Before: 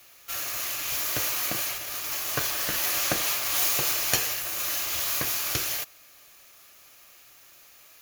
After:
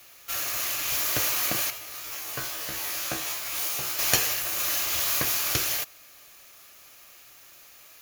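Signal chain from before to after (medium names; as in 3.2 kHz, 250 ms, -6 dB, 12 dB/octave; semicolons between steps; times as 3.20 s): 1.70–3.99 s: feedback comb 65 Hz, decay 0.31 s, harmonics all, mix 90%; trim +2 dB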